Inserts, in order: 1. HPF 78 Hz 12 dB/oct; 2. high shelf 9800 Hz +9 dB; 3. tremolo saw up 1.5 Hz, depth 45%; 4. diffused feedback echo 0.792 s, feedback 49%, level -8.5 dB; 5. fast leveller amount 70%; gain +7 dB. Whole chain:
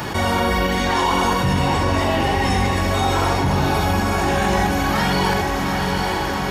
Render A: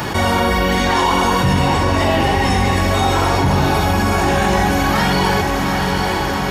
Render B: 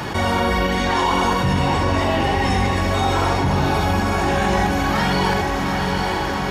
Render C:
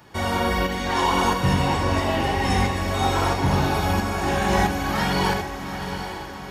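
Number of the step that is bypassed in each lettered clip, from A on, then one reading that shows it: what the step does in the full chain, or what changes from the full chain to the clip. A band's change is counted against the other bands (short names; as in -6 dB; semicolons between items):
3, loudness change +3.5 LU; 2, 8 kHz band -2.5 dB; 5, crest factor change +2.5 dB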